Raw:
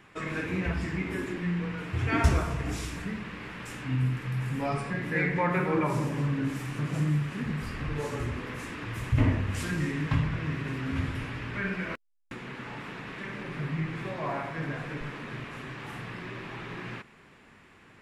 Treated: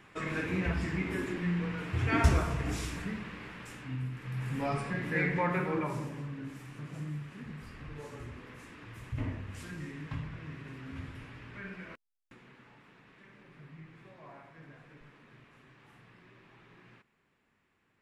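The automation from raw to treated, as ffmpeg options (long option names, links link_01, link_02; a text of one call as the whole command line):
ffmpeg -i in.wav -af "volume=6.5dB,afade=type=out:start_time=2.88:duration=1.23:silence=0.354813,afade=type=in:start_time=4.11:duration=0.5:silence=0.398107,afade=type=out:start_time=5.33:duration=0.93:silence=0.334965,afade=type=out:start_time=11.82:duration=0.96:silence=0.446684" out.wav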